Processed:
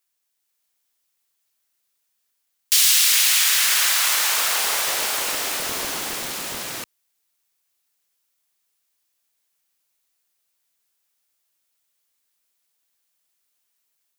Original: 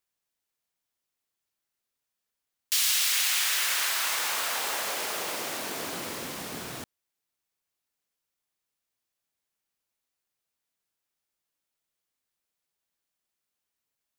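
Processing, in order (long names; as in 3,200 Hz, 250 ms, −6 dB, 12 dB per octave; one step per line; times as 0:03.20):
spectral tilt +2 dB per octave
automatic gain control gain up to 3 dB
highs frequency-modulated by the lows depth 0.79 ms
level +2.5 dB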